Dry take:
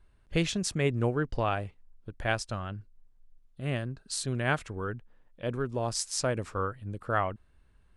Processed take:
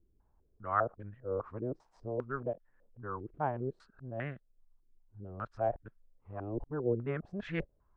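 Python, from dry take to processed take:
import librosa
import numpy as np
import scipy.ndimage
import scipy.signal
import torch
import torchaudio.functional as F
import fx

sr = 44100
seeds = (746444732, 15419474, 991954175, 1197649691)

y = x[::-1].copy()
y = fx.filter_held_lowpass(y, sr, hz=5.0, low_hz=350.0, high_hz=1700.0)
y = y * librosa.db_to_amplitude(-9.0)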